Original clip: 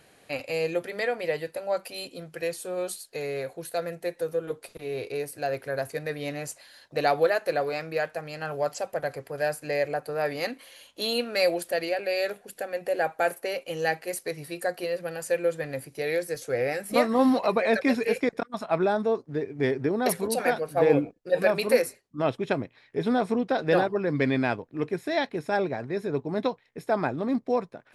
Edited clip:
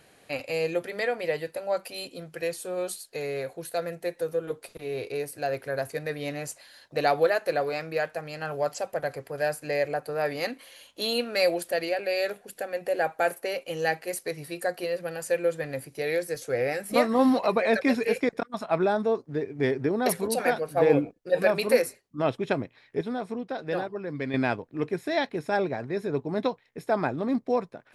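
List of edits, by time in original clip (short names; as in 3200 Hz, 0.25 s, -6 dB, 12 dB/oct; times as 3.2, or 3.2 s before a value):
23.01–24.34 gain -7.5 dB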